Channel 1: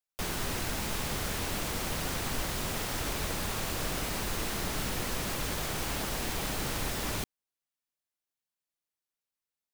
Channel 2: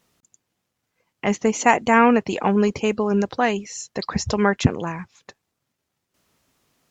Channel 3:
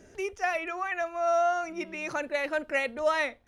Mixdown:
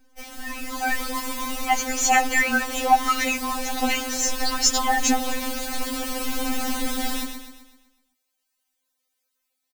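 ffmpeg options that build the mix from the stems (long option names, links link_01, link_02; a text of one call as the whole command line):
ffmpeg -i stem1.wav -i stem2.wav -i stem3.wav -filter_complex "[0:a]bass=frequency=250:gain=-6,treble=frequency=4000:gain=1,acrossover=split=400[link_01][link_02];[link_02]acompressor=threshold=-46dB:ratio=2.5[link_03];[link_01][link_03]amix=inputs=2:normalize=0,volume=2dB,asplit=2[link_04][link_05];[link_05]volume=-7.5dB[link_06];[1:a]equalizer=frequency=770:width=4.4:gain=13,crystalizer=i=9.5:c=0,adelay=450,volume=-17dB[link_07];[2:a]acrusher=bits=7:dc=4:mix=0:aa=0.000001,volume=-3.5dB[link_08];[link_06]aecho=0:1:127|254|381|508|635|762|889:1|0.48|0.23|0.111|0.0531|0.0255|0.0122[link_09];[link_04][link_07][link_08][link_09]amix=inputs=4:normalize=0,dynaudnorm=framelen=130:gausssize=13:maxgain=13dB,afftfilt=real='re*3.46*eq(mod(b,12),0)':imag='im*3.46*eq(mod(b,12),0)':win_size=2048:overlap=0.75" out.wav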